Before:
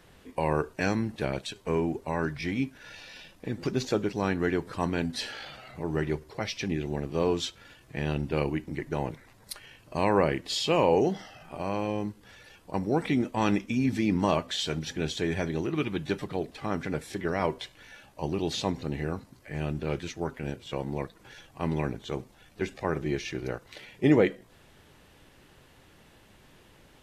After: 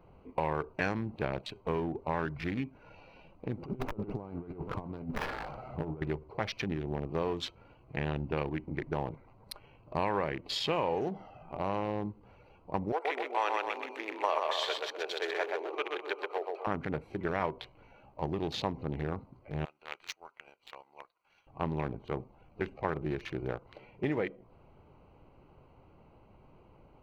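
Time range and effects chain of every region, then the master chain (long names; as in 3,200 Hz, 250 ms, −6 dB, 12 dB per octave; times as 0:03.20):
0:03.65–0:06.02: compressor whose output falls as the input rises −34 dBFS, ratio −0.5 + windowed peak hold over 9 samples
0:12.92–0:16.67: Butterworth high-pass 430 Hz + repeating echo 126 ms, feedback 48%, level −3 dB
0:19.65–0:21.47: high-pass filter 1,200 Hz + high-shelf EQ 2,500 Hz +12 dB + power curve on the samples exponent 1.4
whole clip: adaptive Wiener filter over 25 samples; downward compressor, threshold −28 dBFS; octave-band graphic EQ 250/1,000/2,000/8,000 Hz −3/+4/+4/−9 dB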